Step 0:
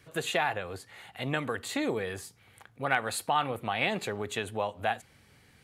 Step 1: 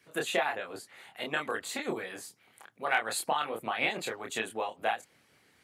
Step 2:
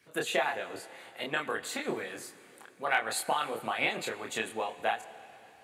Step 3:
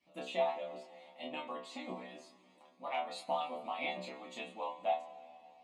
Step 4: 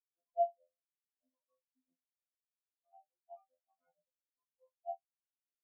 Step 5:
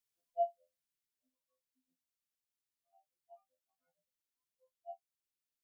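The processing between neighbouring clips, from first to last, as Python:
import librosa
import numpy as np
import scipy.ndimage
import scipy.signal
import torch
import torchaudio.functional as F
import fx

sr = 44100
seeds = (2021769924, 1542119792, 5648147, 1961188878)

y1 = scipy.signal.sosfilt(scipy.signal.butter(2, 170.0, 'highpass', fs=sr, output='sos'), x)
y1 = fx.hpss(y1, sr, part='harmonic', gain_db=-15)
y1 = fx.doubler(y1, sr, ms=27.0, db=-3.0)
y2 = fx.rev_plate(y1, sr, seeds[0], rt60_s=3.6, hf_ratio=0.9, predelay_ms=0, drr_db=14.5)
y3 = scipy.signal.sosfilt(scipy.signal.butter(2, 3400.0, 'lowpass', fs=sr, output='sos'), y2)
y3 = fx.fixed_phaser(y3, sr, hz=420.0, stages=6)
y3 = fx.stiff_resonator(y3, sr, f0_hz=61.0, decay_s=0.49, stiffness=0.002)
y3 = F.gain(torch.from_numpy(y3), 6.0).numpy()
y4 = fx.robotise(y3, sr, hz=85.9)
y4 = fx.sample_hold(y4, sr, seeds[1], rate_hz=3600.0, jitter_pct=0)
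y4 = fx.spectral_expand(y4, sr, expansion=4.0)
y4 = F.gain(torch.from_numpy(y4), -1.0).numpy()
y5 = fx.peak_eq(y4, sr, hz=780.0, db=-7.5, octaves=2.3)
y5 = fx.notch(y5, sr, hz=750.0, q=12.0)
y5 = fx.rider(y5, sr, range_db=10, speed_s=2.0)
y5 = F.gain(torch.from_numpy(y5), 6.0).numpy()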